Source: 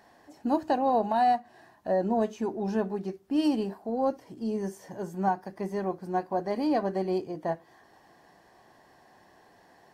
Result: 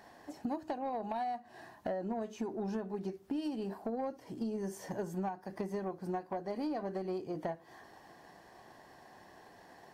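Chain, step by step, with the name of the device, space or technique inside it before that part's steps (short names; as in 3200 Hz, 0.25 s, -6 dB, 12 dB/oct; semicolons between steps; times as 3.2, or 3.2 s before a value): drum-bus smash (transient shaper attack +6 dB, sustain +2 dB; compressor 16:1, threshold -33 dBFS, peak gain reduction 17.5 dB; soft clip -28.5 dBFS, distortion -19 dB); gain +1 dB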